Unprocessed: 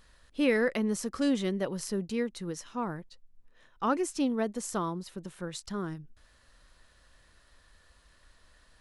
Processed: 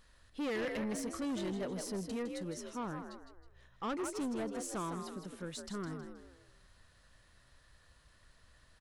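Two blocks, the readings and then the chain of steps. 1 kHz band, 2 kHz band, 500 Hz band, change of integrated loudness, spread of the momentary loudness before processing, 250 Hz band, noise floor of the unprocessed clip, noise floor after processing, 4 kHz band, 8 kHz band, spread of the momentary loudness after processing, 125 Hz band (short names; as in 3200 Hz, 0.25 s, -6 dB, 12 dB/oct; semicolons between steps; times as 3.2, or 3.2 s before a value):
-7.0 dB, -8.5 dB, -8.0 dB, -7.5 dB, 12 LU, -7.5 dB, -63 dBFS, -66 dBFS, -6.0 dB, -5.0 dB, 9 LU, -6.0 dB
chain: frequency-shifting echo 0.159 s, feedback 36%, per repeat +58 Hz, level -8 dB; soft clip -29 dBFS, distortion -9 dB; gain -4 dB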